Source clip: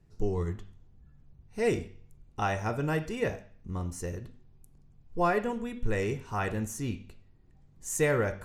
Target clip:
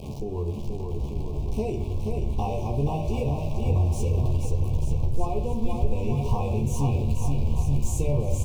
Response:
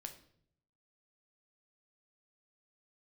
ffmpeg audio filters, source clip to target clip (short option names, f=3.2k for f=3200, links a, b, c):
-filter_complex "[0:a]aeval=exprs='val(0)+0.5*0.0141*sgn(val(0))':c=same,acompressor=threshold=-34dB:ratio=6,highpass=f=54:p=1,asplit=2[a][b];[1:a]atrim=start_sample=2205,highshelf=f=7.7k:g=-9[c];[b][c]afir=irnorm=-1:irlink=0,volume=9dB[d];[a][d]amix=inputs=2:normalize=0,asubboost=boost=10:cutoff=69,asuperstop=centerf=1600:order=12:qfactor=1.3,tiltshelf=f=920:g=4.5,asplit=2[e][f];[f]adelay=14,volume=-4dB[g];[e][g]amix=inputs=2:normalize=0,aecho=1:1:480|888|1235|1530|1780:0.631|0.398|0.251|0.158|0.1,volume=-3.5dB"